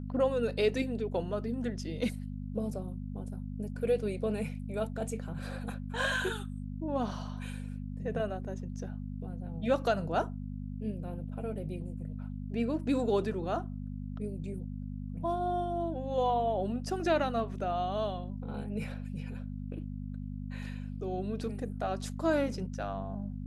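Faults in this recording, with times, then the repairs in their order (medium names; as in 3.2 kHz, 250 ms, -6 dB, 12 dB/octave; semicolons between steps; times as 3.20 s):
hum 50 Hz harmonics 5 -39 dBFS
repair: de-hum 50 Hz, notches 5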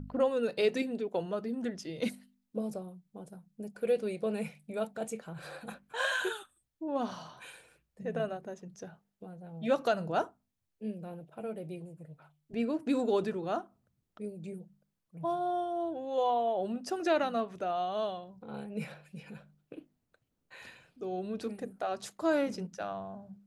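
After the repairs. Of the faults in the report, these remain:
nothing left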